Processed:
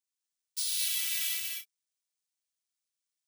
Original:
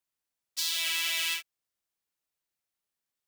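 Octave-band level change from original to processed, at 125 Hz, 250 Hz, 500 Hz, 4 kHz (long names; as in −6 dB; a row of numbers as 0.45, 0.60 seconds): can't be measured, below −25 dB, below −20 dB, −5.0 dB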